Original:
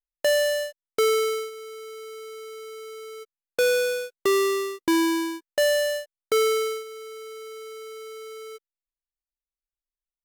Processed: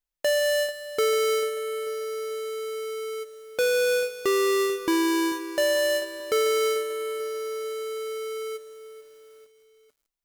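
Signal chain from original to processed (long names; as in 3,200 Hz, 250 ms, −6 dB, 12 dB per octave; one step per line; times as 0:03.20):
brickwall limiter −25.5 dBFS, peak gain reduction 7 dB
convolution reverb RT60 1.1 s, pre-delay 105 ms, DRR 18.5 dB
feedback echo at a low word length 441 ms, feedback 55%, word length 9 bits, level −14 dB
level +5 dB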